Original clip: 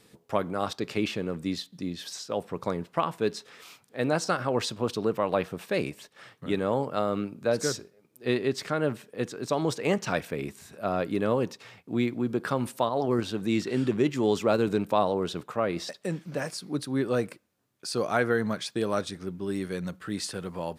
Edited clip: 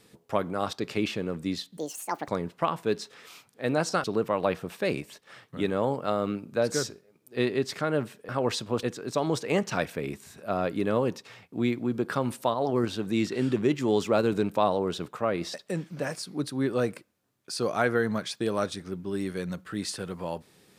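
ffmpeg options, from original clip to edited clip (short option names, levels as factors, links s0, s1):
-filter_complex "[0:a]asplit=6[s0][s1][s2][s3][s4][s5];[s0]atrim=end=1.774[s6];[s1]atrim=start=1.77:end=2.63,asetpts=PTS-STARTPTS,asetrate=74529,aresample=44100,atrim=end_sample=22441,asetpts=PTS-STARTPTS[s7];[s2]atrim=start=2.626:end=4.392[s8];[s3]atrim=start=4.928:end=9.182[s9];[s4]atrim=start=4.388:end=4.932[s10];[s5]atrim=start=9.178[s11];[s6][s7]acrossfade=d=0.004:c1=hsin:c2=hsin[s12];[s12][s8]acrossfade=d=0.004:c1=hsin:c2=hsin[s13];[s13][s9]acrossfade=d=0.004:c1=hsin:c2=hsin[s14];[s14][s10]acrossfade=d=0.004:c1=hsin:c2=hsin[s15];[s15][s11]acrossfade=d=0.004:c1=hsin:c2=hsin"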